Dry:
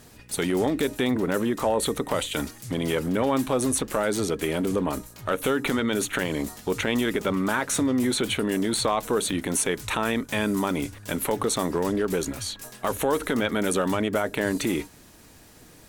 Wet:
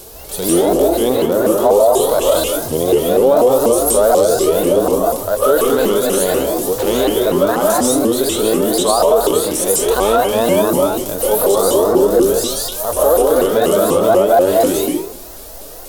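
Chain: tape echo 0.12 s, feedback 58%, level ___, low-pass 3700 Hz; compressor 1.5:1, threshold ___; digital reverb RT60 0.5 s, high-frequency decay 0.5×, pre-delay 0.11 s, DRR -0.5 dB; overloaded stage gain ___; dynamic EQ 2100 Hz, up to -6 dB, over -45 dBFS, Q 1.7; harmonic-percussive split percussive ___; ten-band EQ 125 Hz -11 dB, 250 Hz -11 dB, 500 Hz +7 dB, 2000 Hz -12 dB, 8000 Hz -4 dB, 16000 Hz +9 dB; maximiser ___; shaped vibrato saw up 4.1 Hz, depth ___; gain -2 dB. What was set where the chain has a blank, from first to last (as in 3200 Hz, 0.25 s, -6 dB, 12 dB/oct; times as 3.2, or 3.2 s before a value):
-23 dB, -29 dBFS, 17 dB, -16 dB, +20.5 dB, 250 cents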